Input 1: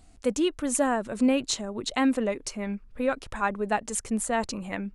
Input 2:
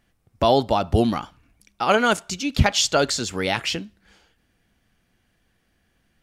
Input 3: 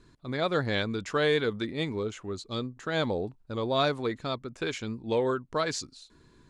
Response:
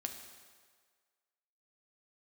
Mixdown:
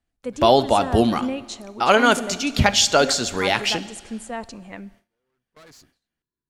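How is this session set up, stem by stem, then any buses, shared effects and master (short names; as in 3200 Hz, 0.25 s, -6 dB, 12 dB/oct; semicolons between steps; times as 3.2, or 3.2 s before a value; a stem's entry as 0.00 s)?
-6.0 dB, 0.00 s, send -11 dB, high shelf 9300 Hz -10.5 dB
0.0 dB, 0.00 s, send -4.5 dB, low shelf 170 Hz -7 dB
-9.5 dB, 0.00 s, no send, tube stage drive 36 dB, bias 0.65; auto duck -22 dB, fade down 1.80 s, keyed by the first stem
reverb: on, RT60 1.7 s, pre-delay 4 ms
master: gate with hold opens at -42 dBFS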